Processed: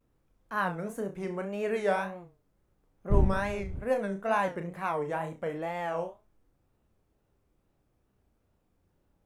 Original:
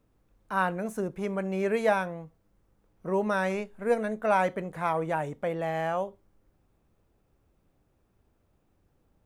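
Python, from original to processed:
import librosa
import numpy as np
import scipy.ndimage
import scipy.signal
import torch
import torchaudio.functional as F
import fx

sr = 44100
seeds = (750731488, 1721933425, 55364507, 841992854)

y = fx.dmg_wind(x, sr, seeds[0], corner_hz=90.0, level_db=-25.0, at=(3.1, 3.78), fade=0.02)
y = fx.room_flutter(y, sr, wall_m=5.7, rt60_s=0.27)
y = fx.wow_flutter(y, sr, seeds[1], rate_hz=2.1, depth_cents=150.0)
y = F.gain(torch.from_numpy(y), -4.0).numpy()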